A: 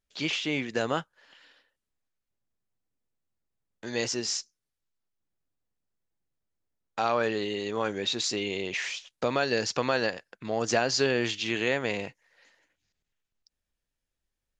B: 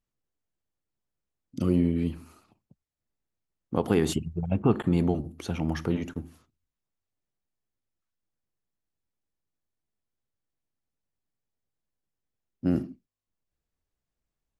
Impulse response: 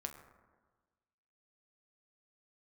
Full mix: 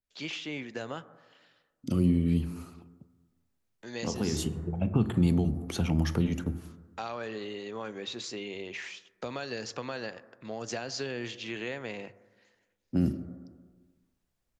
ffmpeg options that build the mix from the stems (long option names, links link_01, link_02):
-filter_complex "[0:a]adynamicequalizer=threshold=0.00708:dfrequency=3000:dqfactor=0.7:tfrequency=3000:tqfactor=0.7:attack=5:release=100:ratio=0.375:range=2.5:mode=cutabove:tftype=highshelf,volume=-9dB,asplit=3[link_01][link_02][link_03];[link_02]volume=-6dB[link_04];[1:a]adelay=300,volume=1.5dB,asplit=2[link_05][link_06];[link_06]volume=-3.5dB[link_07];[link_03]apad=whole_len=657074[link_08];[link_05][link_08]sidechaincompress=threshold=-53dB:ratio=8:attack=32:release=875[link_09];[2:a]atrim=start_sample=2205[link_10];[link_04][link_07]amix=inputs=2:normalize=0[link_11];[link_11][link_10]afir=irnorm=-1:irlink=0[link_12];[link_01][link_09][link_12]amix=inputs=3:normalize=0,bandreject=frequency=50:width_type=h:width=6,bandreject=frequency=100:width_type=h:width=6,acrossover=split=210|3000[link_13][link_14][link_15];[link_14]acompressor=threshold=-34dB:ratio=4[link_16];[link_13][link_16][link_15]amix=inputs=3:normalize=0"